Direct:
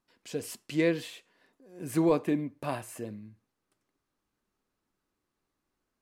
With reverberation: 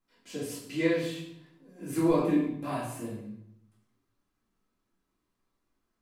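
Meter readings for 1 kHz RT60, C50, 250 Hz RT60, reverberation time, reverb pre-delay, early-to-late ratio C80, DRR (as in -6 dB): 0.70 s, 2.5 dB, 1.0 s, 0.70 s, 3 ms, 6.0 dB, -9.5 dB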